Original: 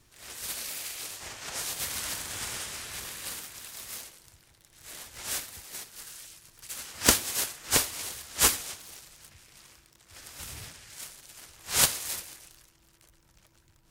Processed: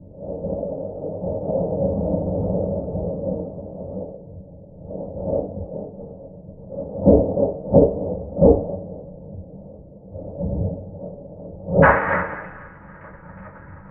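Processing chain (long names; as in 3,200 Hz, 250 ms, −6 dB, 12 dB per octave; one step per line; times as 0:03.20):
Butterworth low-pass 660 Hz 48 dB per octave, from 0:11.82 1,900 Hz
convolution reverb RT60 0.30 s, pre-delay 3 ms, DRR −7.5 dB
boost into a limiter +19 dB
level −1 dB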